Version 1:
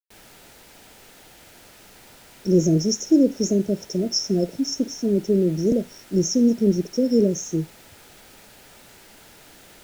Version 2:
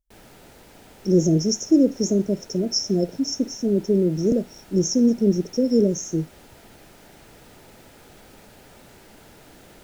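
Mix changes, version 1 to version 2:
speech: entry -1.40 s; background: add tilt shelf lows +4.5 dB, about 1.1 kHz

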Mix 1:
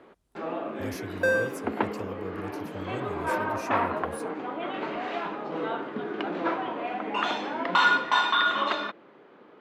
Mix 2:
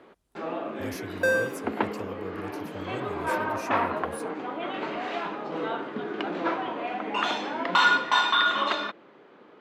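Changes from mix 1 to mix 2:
speech: add tone controls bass -2 dB, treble -4 dB; master: add treble shelf 4.1 kHz +6 dB

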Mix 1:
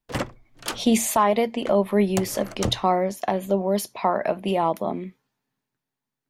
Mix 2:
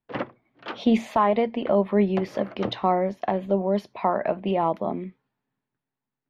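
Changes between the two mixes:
background: add band-pass 210–3900 Hz; master: add distance through air 300 m

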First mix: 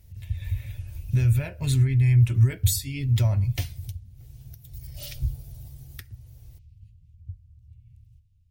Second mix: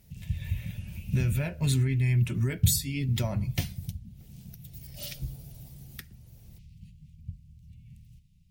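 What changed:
background +11.0 dB; master: add resonant low shelf 130 Hz -8.5 dB, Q 3

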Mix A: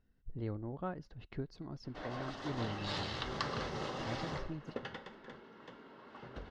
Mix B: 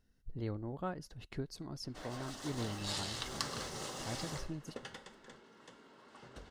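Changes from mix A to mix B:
background -5.5 dB; master: remove distance through air 240 m

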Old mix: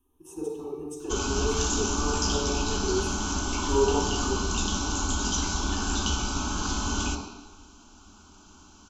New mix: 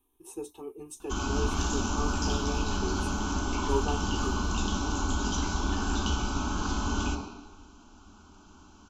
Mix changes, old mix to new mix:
speech: send off; background: add treble shelf 3.7 kHz -10.5 dB

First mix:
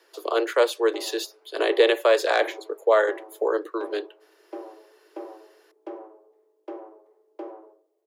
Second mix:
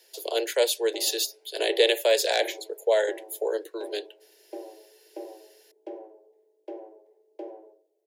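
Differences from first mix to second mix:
speech: add tilt EQ +3 dB/octave; master: add static phaser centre 500 Hz, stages 4

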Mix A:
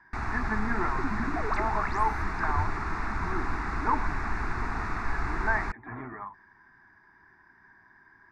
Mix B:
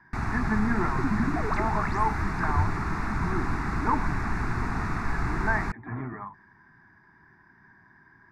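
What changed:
first sound: remove distance through air 51 m; master: add peaking EQ 150 Hz +10.5 dB 1.6 oct

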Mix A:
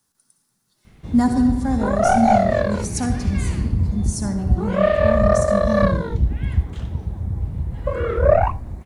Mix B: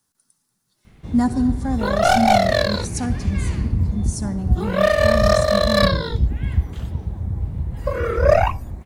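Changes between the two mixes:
speech: send -9.5 dB; second sound: remove low-pass 1.4 kHz 12 dB/octave

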